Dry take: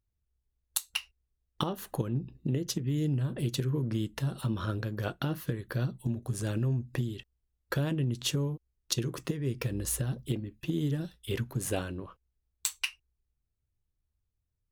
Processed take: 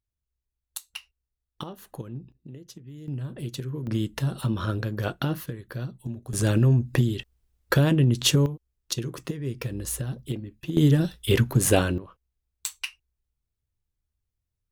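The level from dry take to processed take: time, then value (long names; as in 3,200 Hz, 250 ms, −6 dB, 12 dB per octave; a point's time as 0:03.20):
−5.5 dB
from 0:02.32 −12.5 dB
from 0:03.08 −2.5 dB
from 0:03.87 +5 dB
from 0:05.46 −2 dB
from 0:06.33 +10 dB
from 0:08.46 +1 dB
from 0:10.77 +12 dB
from 0:11.98 −0.5 dB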